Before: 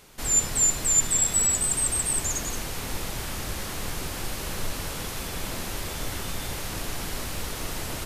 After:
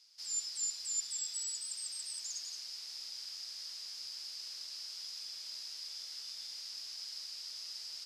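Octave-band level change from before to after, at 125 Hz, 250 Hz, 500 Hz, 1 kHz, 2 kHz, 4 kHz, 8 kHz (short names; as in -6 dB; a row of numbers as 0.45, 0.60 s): under -40 dB, under -40 dB, under -35 dB, -30.5 dB, -23.0 dB, -4.0 dB, -16.0 dB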